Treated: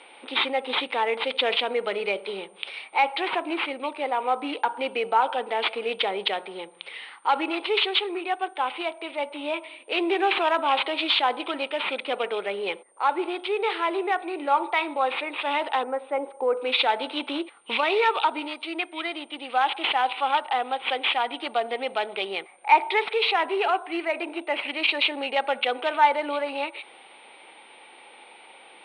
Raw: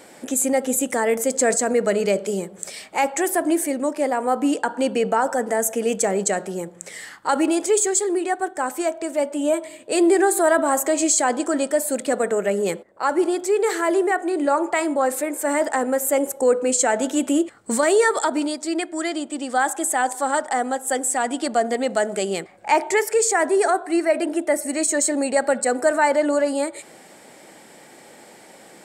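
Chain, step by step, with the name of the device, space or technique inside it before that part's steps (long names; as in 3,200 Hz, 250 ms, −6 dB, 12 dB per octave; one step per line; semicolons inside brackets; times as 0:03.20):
0:15.83–0:16.57: low-pass filter 1,600 Hz 12 dB per octave
toy sound module (linearly interpolated sample-rate reduction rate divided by 4×; switching amplifier with a slow clock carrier 8,900 Hz; loudspeaker in its box 580–4,000 Hz, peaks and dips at 620 Hz −8 dB, 900 Hz +4 dB, 1,700 Hz −9 dB, 2,400 Hz +7 dB, 3,800 Hz +6 dB)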